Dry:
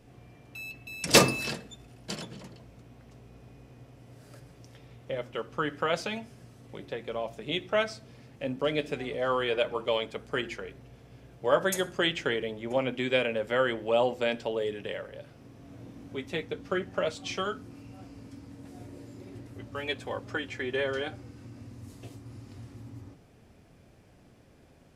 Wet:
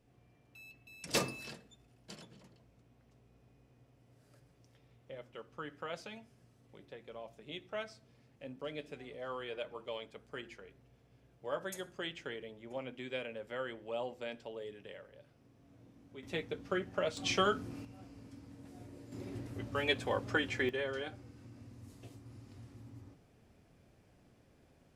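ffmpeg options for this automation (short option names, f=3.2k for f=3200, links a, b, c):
-af "asetnsamples=n=441:p=0,asendcmd='16.23 volume volume -5dB;17.17 volume volume 2dB;17.85 volume volume -6.5dB;19.12 volume volume 1dB;20.69 volume volume -7.5dB',volume=-14dB"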